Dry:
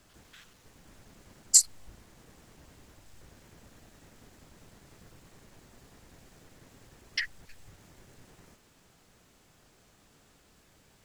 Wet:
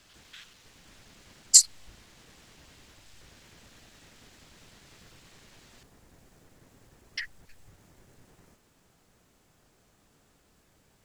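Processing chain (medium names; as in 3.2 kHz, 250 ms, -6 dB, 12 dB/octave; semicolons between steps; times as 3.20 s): peaking EQ 3.5 kHz +9.5 dB 2.4 oct, from 5.83 s -2.5 dB; trim -2 dB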